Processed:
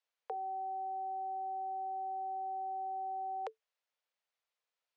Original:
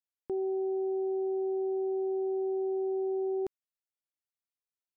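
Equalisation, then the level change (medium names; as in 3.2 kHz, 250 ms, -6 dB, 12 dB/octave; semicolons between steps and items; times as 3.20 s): Chebyshev high-pass 440 Hz, order 10; distance through air 130 m; +10.5 dB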